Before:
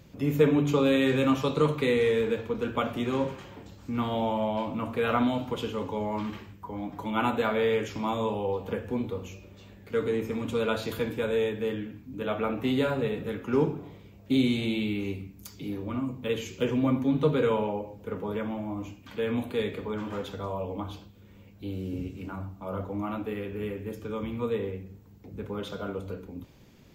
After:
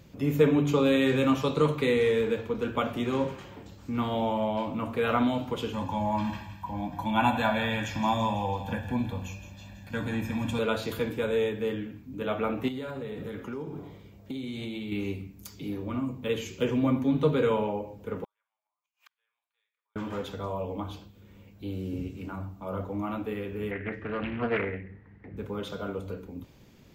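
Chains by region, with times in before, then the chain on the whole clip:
0:05.73–0:10.59: comb filter 1.2 ms, depth 94% + feedback echo with a high-pass in the loop 166 ms, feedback 62%, high-pass 1,200 Hz, level −10 dB
0:12.68–0:14.92: notch filter 2,600 Hz, Q 14 + downward compressor 10 to 1, threshold −32 dBFS + floating-point word with a short mantissa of 6 bits
0:18.24–0:19.96: high-pass filter 970 Hz 24 dB per octave + gate with flip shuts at −41 dBFS, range −42 dB
0:23.71–0:25.37: low-pass with resonance 1,900 Hz, resonance Q 8.7 + highs frequency-modulated by the lows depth 0.53 ms
whole clip: no processing

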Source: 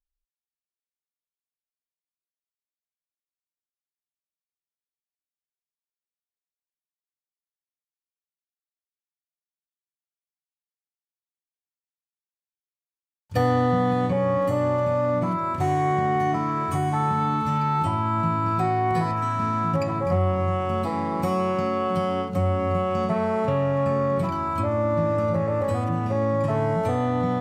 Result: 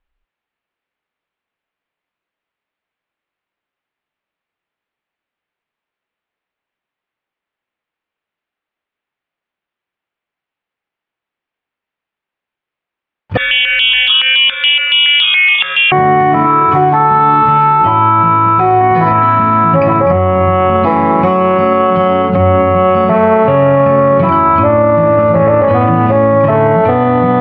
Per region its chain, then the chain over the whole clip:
0:13.37–0:15.92: voice inversion scrambler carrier 3,500 Hz + step-sequenced phaser 7.1 Hz 810–2,000 Hz
0:16.44–0:18.81: double-tracking delay 16 ms −5 dB + centre clipping without the shift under −42.5 dBFS
whole clip: low-pass filter 2,800 Hz 24 dB per octave; low-shelf EQ 170 Hz −8 dB; boost into a limiter +22.5 dB; level −1 dB

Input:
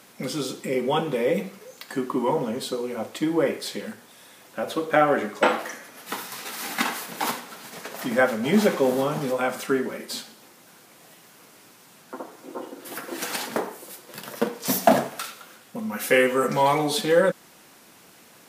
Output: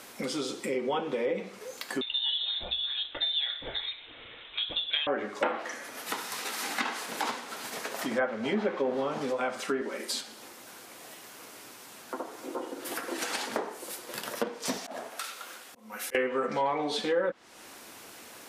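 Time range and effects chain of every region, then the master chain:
0:02.01–0:05.07: dynamic equaliser 1,400 Hz, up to −6 dB, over −43 dBFS, Q 1.7 + voice inversion scrambler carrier 3,900 Hz
0:09.81–0:10.21: high-pass filter 210 Hz 24 dB per octave + high-shelf EQ 4,800 Hz +5.5 dB
0:14.77–0:16.15: high-pass filter 400 Hz 6 dB per octave + volume swells 626 ms
whole clip: treble cut that deepens with the level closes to 2,300 Hz, closed at −16 dBFS; parametric band 160 Hz −11 dB 0.71 octaves; downward compressor 2 to 1, threshold −39 dBFS; level +4 dB

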